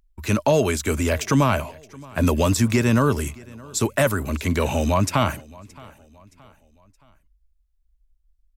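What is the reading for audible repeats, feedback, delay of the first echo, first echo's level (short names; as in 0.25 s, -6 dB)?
2, 44%, 0.621 s, -23.0 dB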